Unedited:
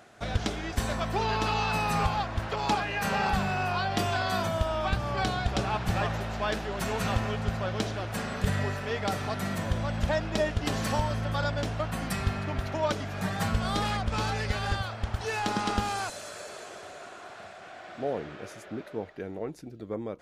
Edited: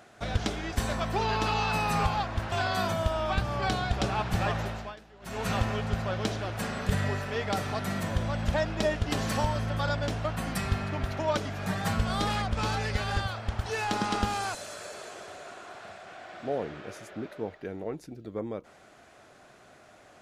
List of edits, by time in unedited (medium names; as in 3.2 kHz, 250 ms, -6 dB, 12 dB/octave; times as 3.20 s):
2.52–4.07 s: delete
6.22–7.04 s: dip -20 dB, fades 0.29 s